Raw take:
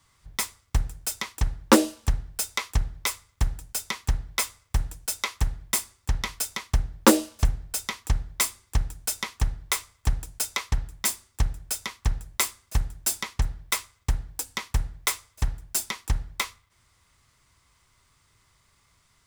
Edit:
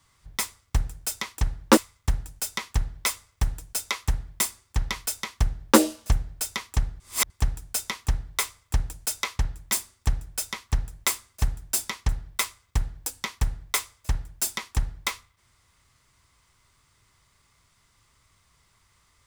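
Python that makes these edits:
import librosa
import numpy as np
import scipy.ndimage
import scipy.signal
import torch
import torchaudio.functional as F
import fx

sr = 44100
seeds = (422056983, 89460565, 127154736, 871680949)

y = fx.edit(x, sr, fx.cut(start_s=1.77, length_s=1.33),
    fx.reverse_span(start_s=8.33, length_s=0.3), tone=tone)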